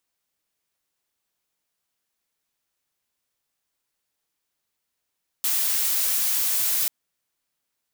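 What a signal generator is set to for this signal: noise blue, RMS -23 dBFS 1.44 s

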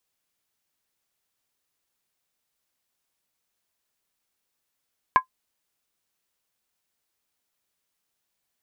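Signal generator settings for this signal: skin hit, lowest mode 1.03 kHz, decay 0.10 s, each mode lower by 9.5 dB, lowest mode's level -8 dB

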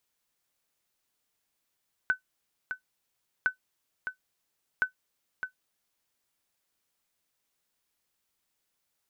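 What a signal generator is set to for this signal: sonar ping 1.51 kHz, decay 0.11 s, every 1.36 s, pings 3, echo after 0.61 s, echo -8.5 dB -16 dBFS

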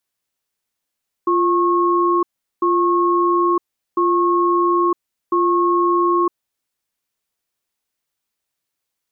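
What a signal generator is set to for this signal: cadence 348 Hz, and 1.09 kHz, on 0.96 s, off 0.39 s, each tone -16 dBFS 5.37 s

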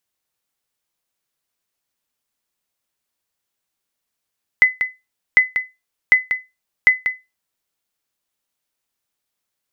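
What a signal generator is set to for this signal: sonar ping 2.02 kHz, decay 0.22 s, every 0.75 s, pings 4, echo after 0.19 s, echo -9 dB -2.5 dBFS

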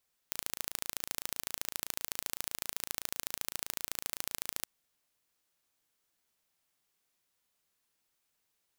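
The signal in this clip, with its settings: pulse train 27.8 per s, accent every 2, -6 dBFS 4.32 s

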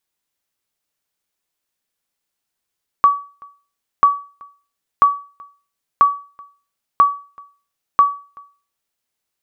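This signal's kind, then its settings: sonar ping 1.14 kHz, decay 0.37 s, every 0.99 s, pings 6, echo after 0.38 s, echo -28 dB -3.5 dBFS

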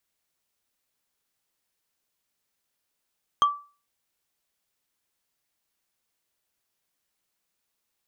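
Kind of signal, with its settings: wood hit, lowest mode 1.16 kHz, decay 0.35 s, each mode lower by 10 dB, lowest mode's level -13 dB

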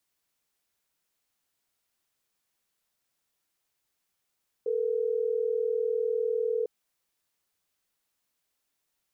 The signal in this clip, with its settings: call progress tone ringback tone, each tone -28 dBFS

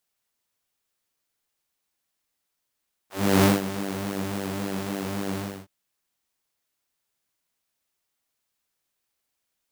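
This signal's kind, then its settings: synth patch with pulse-width modulation G2, noise -13.5 dB, filter highpass, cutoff 140 Hz, Q 1.2, filter envelope 3 oct, filter decay 0.10 s, filter sustain 15%, attack 338 ms, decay 0.17 s, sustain -14 dB, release 0.29 s, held 2.28 s, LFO 3.6 Hz, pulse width 25%, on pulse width 17%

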